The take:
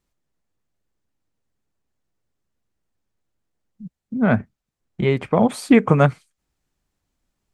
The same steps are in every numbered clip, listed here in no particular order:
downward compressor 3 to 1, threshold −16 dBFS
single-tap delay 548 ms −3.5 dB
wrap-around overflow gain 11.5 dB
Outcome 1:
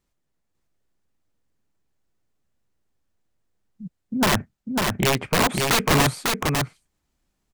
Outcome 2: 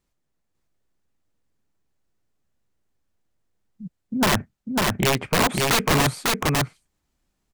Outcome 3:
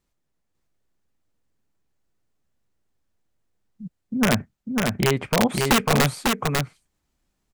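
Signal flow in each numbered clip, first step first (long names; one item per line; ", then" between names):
wrap-around overflow, then downward compressor, then single-tap delay
wrap-around overflow, then single-tap delay, then downward compressor
downward compressor, then wrap-around overflow, then single-tap delay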